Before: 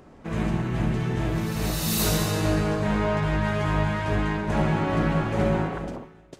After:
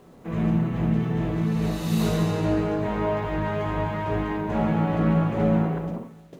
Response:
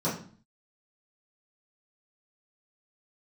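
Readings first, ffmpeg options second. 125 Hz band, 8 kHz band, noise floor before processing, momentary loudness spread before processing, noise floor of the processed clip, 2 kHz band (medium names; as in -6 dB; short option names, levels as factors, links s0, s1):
+0.5 dB, -12.0 dB, -50 dBFS, 4 LU, -49 dBFS, -5.0 dB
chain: -filter_complex "[0:a]lowpass=f=2900:p=1,acrusher=bits=9:mix=0:aa=0.000001,asplit=2[s0][s1];[1:a]atrim=start_sample=2205,atrim=end_sample=6174[s2];[s1][s2]afir=irnorm=-1:irlink=0,volume=0.178[s3];[s0][s3]amix=inputs=2:normalize=0,volume=0.708"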